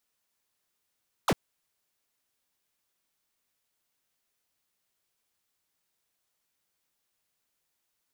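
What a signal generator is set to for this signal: laser zap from 1500 Hz, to 110 Hz, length 0.05 s square, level -23 dB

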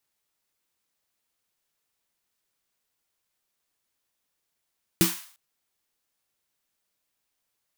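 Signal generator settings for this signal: snare drum length 0.35 s, tones 180 Hz, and 330 Hz, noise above 890 Hz, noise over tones -4 dB, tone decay 0.20 s, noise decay 0.50 s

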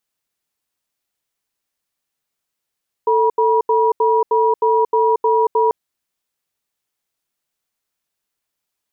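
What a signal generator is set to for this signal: cadence 444 Hz, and 962 Hz, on 0.23 s, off 0.08 s, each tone -14.5 dBFS 2.64 s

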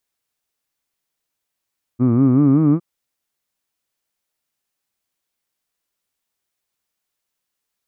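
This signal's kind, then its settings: formant vowel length 0.81 s, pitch 117 Hz, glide +5.5 st, vibrato depth 1.25 st, F1 280 Hz, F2 1200 Hz, F3 2300 Hz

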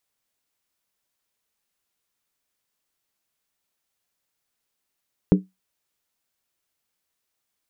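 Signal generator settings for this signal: skin hit, lowest mode 187 Hz, decay 0.19 s, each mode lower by 5 dB, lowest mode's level -8 dB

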